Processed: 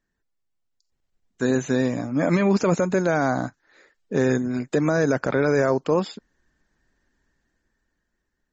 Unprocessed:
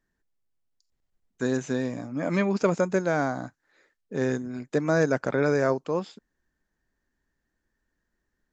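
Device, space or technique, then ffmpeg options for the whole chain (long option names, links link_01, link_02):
low-bitrate web radio: -af "dynaudnorm=framelen=230:gausssize=13:maxgain=13.5dB,alimiter=limit=-10.5dB:level=0:latency=1:release=41" -ar 48000 -c:a libmp3lame -b:a 32k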